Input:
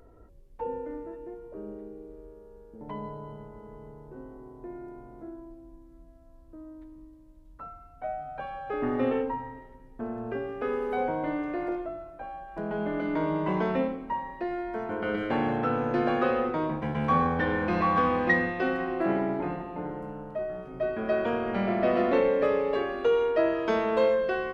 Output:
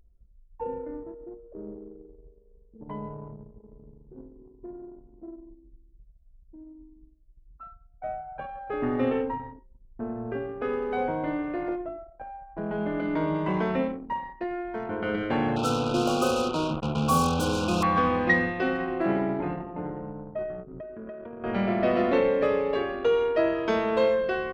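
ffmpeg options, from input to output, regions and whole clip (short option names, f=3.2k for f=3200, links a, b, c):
-filter_complex "[0:a]asettb=1/sr,asplit=3[a][b][c];[a]atrim=end=13.344[d];[b]atrim=start=13.34:end=14.88,asetpts=PTS-STARTPTS,afade=t=in:d=0.004:c=qsin,afade=t=out:st=1.536:d=0.004:c=qsin,aemphasis=mode=production:type=75fm,acrossover=split=2700[e][f];[f]acompressor=threshold=-56dB:ratio=4:attack=1:release=60[g];[e][g]amix=inputs=2:normalize=0[h];[c]atrim=start=14.876[i];[d][h]acrossfade=d=0.004:c1=hsin:c2=qsin[j];[j][i]acrossfade=d=0.004:c1=qsin:c2=hsin,asettb=1/sr,asplit=3[k][l][m];[k]atrim=end=15.564[n];[l]atrim=start=15.56:end=17.83,asetpts=PTS-STARTPTS,afade=t=in:d=0.004:c=qsin,afade=t=out:st=2.266:d=0.004:c=qsin,acrusher=bits=4:mix=0:aa=0.5,asuperstop=centerf=1900:order=20:qfactor=2.1[o];[m]atrim=start=17.826[p];[n][o]acrossfade=d=0.004:c1=hsin:c2=qsin[q];[q][p]acrossfade=d=0.004:c1=qsin:c2=hsin,asettb=1/sr,asplit=3[r][s][t];[r]atrim=end=20.644[u];[s]atrim=start=20.64:end=21.44,asetpts=PTS-STARTPTS,afade=t=in:d=0.004:c=qsin,afade=t=out:st=0.796:d=0.004:c=qsin,bandreject=f=780:w=6.1,acompressor=threshold=-36dB:ratio=8:attack=3.2:release=140:knee=1:detection=peak[v];[t]atrim=start=21.436[w];[u][v]acrossfade=d=0.004:c1=hsin:c2=qsin[x];[x][w]acrossfade=d=0.004:c1=qsin:c2=hsin,equalizer=f=96:t=o:w=2.5:g=4,anlmdn=1.58,adynamicequalizer=threshold=0.00794:dfrequency=2100:dqfactor=0.7:tfrequency=2100:tqfactor=0.7:attack=5:release=100:ratio=0.375:range=2:mode=boostabove:tftype=highshelf"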